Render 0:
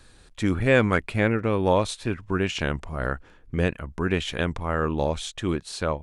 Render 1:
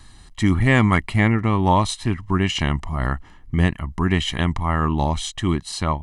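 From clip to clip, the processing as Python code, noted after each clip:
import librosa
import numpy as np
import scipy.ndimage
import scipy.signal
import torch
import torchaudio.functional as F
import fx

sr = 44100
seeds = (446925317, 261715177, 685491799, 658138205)

y = x + 0.76 * np.pad(x, (int(1.0 * sr / 1000.0), 0))[:len(x)]
y = y * 10.0 ** (3.5 / 20.0)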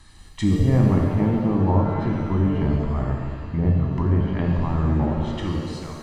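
y = fx.fade_out_tail(x, sr, length_s=0.86)
y = fx.env_lowpass_down(y, sr, base_hz=640.0, full_db=-17.0)
y = fx.rev_shimmer(y, sr, seeds[0], rt60_s=1.8, semitones=7, shimmer_db=-8, drr_db=-0.5)
y = y * 10.0 ** (-4.0 / 20.0)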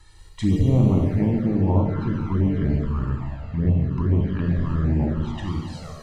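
y = fx.env_flanger(x, sr, rest_ms=2.3, full_db=-14.0)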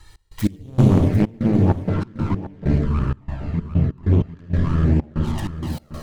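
y = fx.tracing_dist(x, sr, depth_ms=0.28)
y = fx.step_gate(y, sr, bpm=96, pattern='x.x..xxx.xx.', floor_db=-24.0, edge_ms=4.5)
y = y + 10.0 ** (-13.5 / 20.0) * np.pad(y, (int(748 * sr / 1000.0), 0))[:len(y)]
y = y * 10.0 ** (4.0 / 20.0)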